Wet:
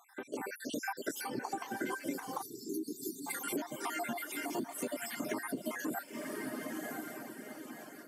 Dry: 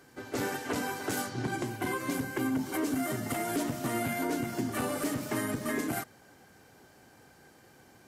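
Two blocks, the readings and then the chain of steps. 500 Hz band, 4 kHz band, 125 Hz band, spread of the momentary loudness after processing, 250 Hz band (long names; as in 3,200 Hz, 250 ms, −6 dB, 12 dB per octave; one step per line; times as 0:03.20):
−5.5 dB, −4.5 dB, −16.0 dB, 6 LU, −7.0 dB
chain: time-frequency cells dropped at random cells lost 64%
feedback delay with all-pass diffusion 1,056 ms, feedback 40%, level −8 dB
reverb reduction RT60 0.69 s
dynamic equaliser 900 Hz, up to +6 dB, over −56 dBFS, Q 4.1
high-pass filter 190 Hz 24 dB per octave
downward compressor 6 to 1, threshold −41 dBFS, peak gain reduction 12.5 dB
notch filter 3,900 Hz, Q 9.1
automatic gain control gain up to 4 dB
time-frequency box erased 0:02.42–0:03.27, 470–3,500 Hz
level +2.5 dB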